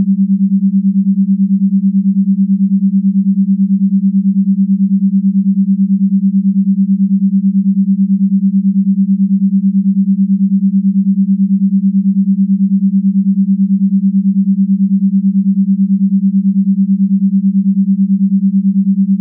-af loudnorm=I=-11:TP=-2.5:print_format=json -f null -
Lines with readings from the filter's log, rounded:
"input_i" : "-11.8",
"input_tp" : "-4.8",
"input_lra" : "0.1",
"input_thresh" : "-21.8",